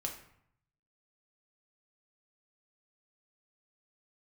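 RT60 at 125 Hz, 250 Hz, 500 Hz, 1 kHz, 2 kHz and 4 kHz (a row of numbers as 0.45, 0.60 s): 1.1, 0.75, 0.65, 0.70, 0.65, 0.50 s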